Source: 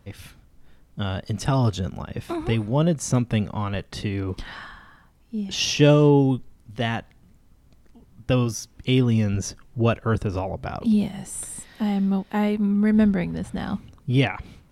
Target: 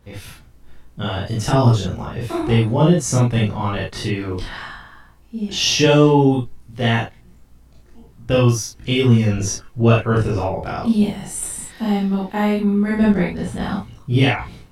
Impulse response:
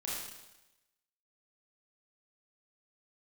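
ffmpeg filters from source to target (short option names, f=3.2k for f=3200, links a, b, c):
-filter_complex "[1:a]atrim=start_sample=2205,atrim=end_sample=6174,asetrate=66150,aresample=44100[a];[0:a][a]afir=irnorm=-1:irlink=0,volume=8.5dB"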